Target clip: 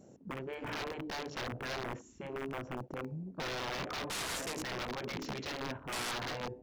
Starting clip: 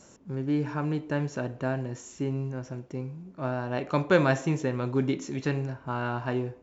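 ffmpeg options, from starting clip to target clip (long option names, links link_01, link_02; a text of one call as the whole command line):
ffmpeg -i in.wav -af "afftfilt=real='re*lt(hypot(re,im),0.141)':imag='im*lt(hypot(re,im),0.141)':win_size=1024:overlap=0.75,aeval=exprs='(mod(42.2*val(0)+1,2)-1)/42.2':channel_layout=same,afwtdn=0.00398,volume=1dB" out.wav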